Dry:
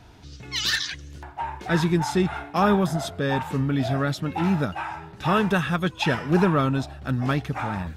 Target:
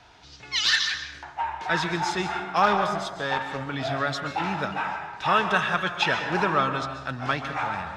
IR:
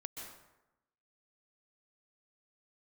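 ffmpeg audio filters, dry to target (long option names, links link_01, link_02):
-filter_complex "[0:a]asettb=1/sr,asplit=3[link_01][link_02][link_03];[link_01]atrim=end=2.634[link_04];[link_02]atrim=start=2.63:end=3.67,asetpts=PTS-STARTPTS,afade=type=in:duration=0.004:curve=qsin,afade=type=out:start_time=1.036:duration=0.004:curve=qsin,aeval=exprs='0.355*(cos(1*acos(clip(val(0)/0.355,-1,1)))-cos(1*PI/2))+0.0224*(cos(7*acos(clip(val(0)/0.355,-1,1)))-cos(7*PI/2))':channel_layout=same[link_05];[link_03]atrim=start=3.666[link_06];[link_04][link_05]acrossfade=duration=0.004:curve1=hsin:curve2=qsin[link_07];[link_07][link_06]acrossfade=duration=0.004:curve1=qsin:curve2=hsin,acrossover=split=570 7300:gain=0.2 1 0.0891[link_08][link_09][link_10];[link_08][link_09][link_10]amix=inputs=3:normalize=0,asplit=2[link_11][link_12];[1:a]atrim=start_sample=2205[link_13];[link_12][link_13]afir=irnorm=-1:irlink=0,volume=3.5dB[link_14];[link_11][link_14]amix=inputs=2:normalize=0,volume=-2.5dB"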